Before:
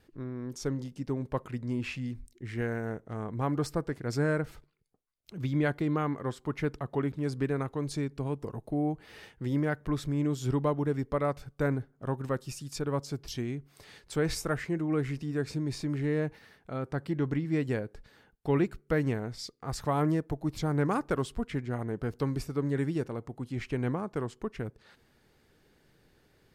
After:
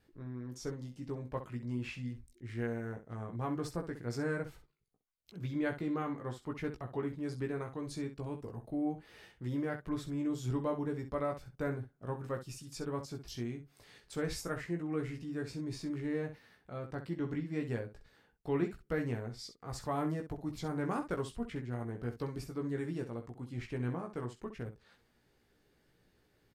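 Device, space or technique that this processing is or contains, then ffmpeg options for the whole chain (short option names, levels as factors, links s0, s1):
slapback doubling: -filter_complex "[0:a]asplit=3[s0][s1][s2];[s1]adelay=17,volume=0.631[s3];[s2]adelay=64,volume=0.316[s4];[s0][s3][s4]amix=inputs=3:normalize=0,volume=0.398"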